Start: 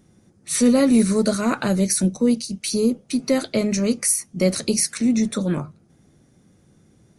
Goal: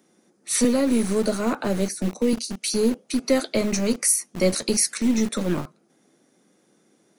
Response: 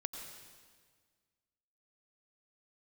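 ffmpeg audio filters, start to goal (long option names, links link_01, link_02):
-filter_complex "[0:a]asettb=1/sr,asplit=3[link_01][link_02][link_03];[link_01]atrim=end=0.644[link_04];[link_02]atrim=start=0.64:end=2.33,asetpts=PTS-STARTPTS,afade=type=in:duration=0.004:curve=qsin,afade=type=out:start_time=1.686:duration=0.004:curve=qsin,acrossover=split=160|980[link_05][link_06][link_07];[link_05]acompressor=threshold=-34dB:ratio=4[link_08];[link_06]acompressor=threshold=-17dB:ratio=4[link_09];[link_07]acompressor=threshold=-34dB:ratio=4[link_10];[link_08][link_09][link_10]amix=inputs=3:normalize=0[link_11];[link_03]atrim=start=2.326[link_12];[link_04][link_11]acrossfade=duration=0.004:curve1=hsin:curve2=qsin[link_13];[link_13][link_12]acrossfade=duration=0.004:curve1=qsin:curve2=hsin,acrossover=split=230|460|1600[link_14][link_15][link_16][link_17];[link_14]acrusher=bits=3:dc=4:mix=0:aa=0.000001[link_18];[link_18][link_15][link_16][link_17]amix=inputs=4:normalize=0"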